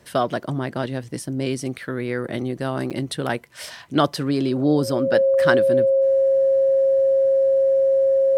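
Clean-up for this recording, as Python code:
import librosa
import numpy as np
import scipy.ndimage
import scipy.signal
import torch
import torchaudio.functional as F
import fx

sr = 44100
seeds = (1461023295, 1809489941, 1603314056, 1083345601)

y = fx.notch(x, sr, hz=540.0, q=30.0)
y = fx.fix_interpolate(y, sr, at_s=(2.9,), length_ms=7.3)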